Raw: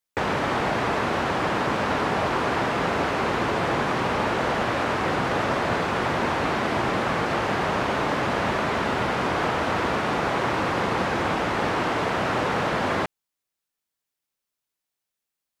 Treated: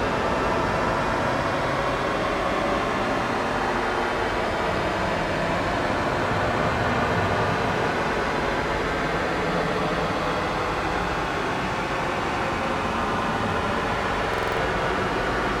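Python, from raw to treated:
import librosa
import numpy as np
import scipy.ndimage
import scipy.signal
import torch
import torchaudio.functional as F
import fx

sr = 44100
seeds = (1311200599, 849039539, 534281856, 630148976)

y = fx.add_hum(x, sr, base_hz=50, snr_db=15)
y = fx.paulstretch(y, sr, seeds[0], factor=30.0, window_s=0.1, from_s=5.49)
y = fx.buffer_glitch(y, sr, at_s=(14.29,), block=2048, repeats=5)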